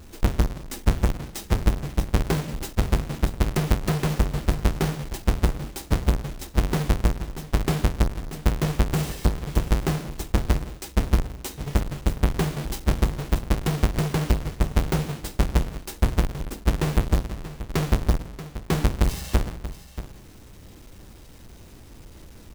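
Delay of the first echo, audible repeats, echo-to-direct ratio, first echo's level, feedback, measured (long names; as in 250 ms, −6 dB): 633 ms, 1, −13.5 dB, −13.5 dB, repeats not evenly spaced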